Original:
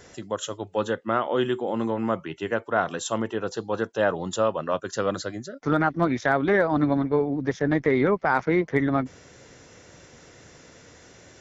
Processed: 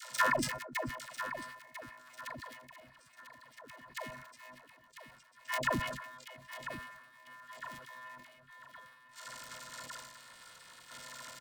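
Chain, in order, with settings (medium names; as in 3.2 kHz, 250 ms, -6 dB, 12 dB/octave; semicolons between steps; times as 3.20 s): cycle switcher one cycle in 2, muted; FFT filter 350 Hz 0 dB, 1.4 kHz -5 dB, 5.3 kHz +2 dB; waveshaping leveller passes 2; inverted gate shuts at -17 dBFS, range -36 dB; robot voice 385 Hz; ring modulator 1.4 kHz; phase dispersion lows, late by 130 ms, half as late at 470 Hz; square tremolo 0.55 Hz, depth 60%, duty 50%; feedback delay 996 ms, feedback 36%, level -10.5 dB; decay stretcher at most 52 dB/s; trim +9 dB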